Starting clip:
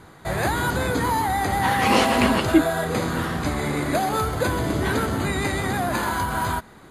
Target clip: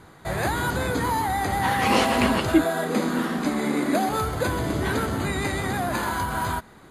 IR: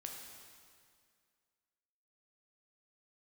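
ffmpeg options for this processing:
-filter_complex "[0:a]asettb=1/sr,asplit=3[a][b][c];[a]atrim=end=2.644[d];[b]atrim=start=2.64:end=4.09,asetpts=PTS-STARTPTS,afade=t=in:d=0.004:c=qsin,afade=t=out:st=1.446:d=0.004:c=qsin,lowshelf=f=150:t=q:w=3:g=-13.5[e];[c]atrim=start=4.086[f];[d][e]acrossfade=d=0.004:c1=hsin:c2=qsin[g];[g][f]acrossfade=d=0.004:c1=qsin:c2=hsin,volume=-2dB"

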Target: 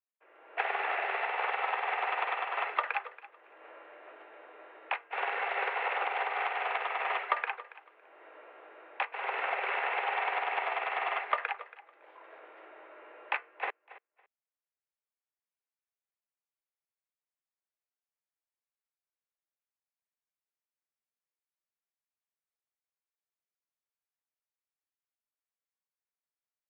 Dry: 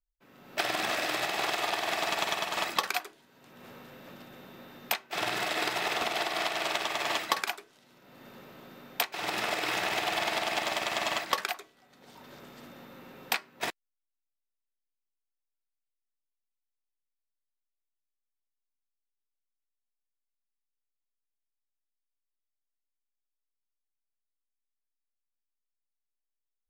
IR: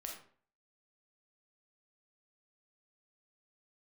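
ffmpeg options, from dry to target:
-filter_complex "[0:a]asplit=2[a][b];[b]aecho=0:1:279|558:0.133|0.024[c];[a][c]amix=inputs=2:normalize=0,highpass=f=350:t=q:w=0.5412,highpass=f=350:t=q:w=1.307,lowpass=f=2.5k:t=q:w=0.5176,lowpass=f=2.5k:t=q:w=0.7071,lowpass=f=2.5k:t=q:w=1.932,afreqshift=82"

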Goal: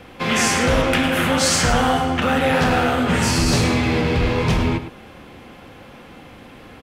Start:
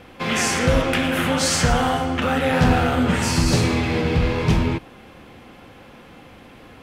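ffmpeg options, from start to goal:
-filter_complex "[0:a]asettb=1/sr,asplit=3[a][b][c];[a]atrim=end=2.554[d];[b]atrim=start=2.55:end=3.1,asetpts=PTS-STARTPTS,afade=t=in:d=0.004:c=qsin,afade=t=out:st=0.546:d=0.004:c=qsin,lowshelf=f=160:g=-8.5[e];[c]atrim=start=3.096[f];[d][e]acrossfade=d=0.004:c1=hsin:c2=qsin[g];[g][f]acrossfade=d=0.004:c1=qsin:c2=hsin,acrossover=split=720|900[h][i][j];[h]asoftclip=type=hard:threshold=-18dB[k];[k][i][j]amix=inputs=3:normalize=0,asplit=2[l][m];[m]adelay=105,volume=-11dB,highshelf=f=4k:g=-2.36[n];[l][n]amix=inputs=2:normalize=0,volume=2.5dB"

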